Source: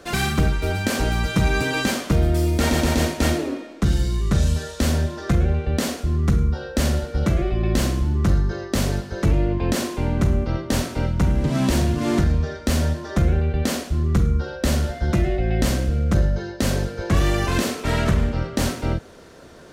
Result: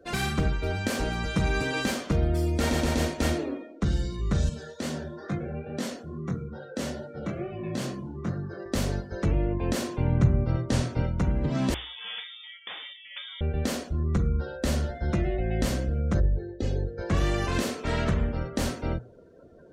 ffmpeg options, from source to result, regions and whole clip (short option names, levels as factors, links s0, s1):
-filter_complex "[0:a]asettb=1/sr,asplit=3[s0][s1][s2];[s0]atrim=end=4.494[s3];[s1]atrim=start=4.49:end=8.66,asetpts=PTS-STARTPTS,afade=t=in:d=0.004:c=qsin,afade=t=out:st=4.166:d=0.004:c=qsin,highpass=f=110:w=0.5412,highpass=f=110:w=1.3066,flanger=delay=20:depth=5.5:speed=2.3[s4];[s2]atrim=start=8.656[s5];[s3][s4]acrossfade=d=0.004:c1=hsin:c2=qsin[s6];[s6][s5]acrossfade=d=0.004:c1=qsin:c2=hsin,asettb=1/sr,asplit=3[s7][s8][s9];[s7]atrim=end=9.884[s10];[s8]atrim=start=9.88:end=11.02,asetpts=PTS-STARTPTS,afade=t=in:d=0.004:c=qsin,afade=t=out:st=1.136:d=0.004:c=qsin,lowpass=11000,equalizer=f=120:w=2.3:g=11.5[s11];[s9]atrim=start=11.016[s12];[s10][s11]acrossfade=d=0.004:c1=hsin:c2=qsin[s13];[s13][s12]acrossfade=d=0.004:c1=qsin:c2=hsin,asettb=1/sr,asplit=3[s14][s15][s16];[s14]atrim=end=11.744[s17];[s15]atrim=start=11.74:end=13.41,asetpts=PTS-STARTPTS,afade=t=in:d=0.004:c=qsin,afade=t=out:st=1.666:d=0.004:c=qsin,highpass=f=1200:p=1,lowpass=f=3100:t=q:w=0.5098,lowpass=f=3100:t=q:w=0.6013,lowpass=f=3100:t=q:w=0.9,lowpass=f=3100:t=q:w=2.563,afreqshift=-3700[s18];[s16]atrim=start=13.406[s19];[s17][s18]acrossfade=d=0.004:c1=hsin:c2=qsin[s20];[s20][s19]acrossfade=d=0.004:c1=qsin:c2=hsin,asettb=1/sr,asplit=3[s21][s22][s23];[s21]atrim=end=16.204[s24];[s22]atrim=start=16.2:end=16.98,asetpts=PTS-STARTPTS,afade=t=in:d=0.004:c=qsin,afade=t=out:st=0.776:d=0.004:c=qsin,lowpass=f=2000:p=1,equalizer=f=1200:w=0.75:g=-11.5,aecho=1:1:2.4:0.55,atrim=end_sample=34398[s25];[s23]atrim=start=16.976[s26];[s24][s25]acrossfade=d=0.004:c1=hsin:c2=qsin[s27];[s27][s26]acrossfade=d=0.004:c1=qsin:c2=hsin,bandreject=f=60:t=h:w=6,bandreject=f=120:t=h:w=6,afftdn=nr=21:nf=-42,equalizer=f=490:w=4.1:g=2.5,volume=0.501"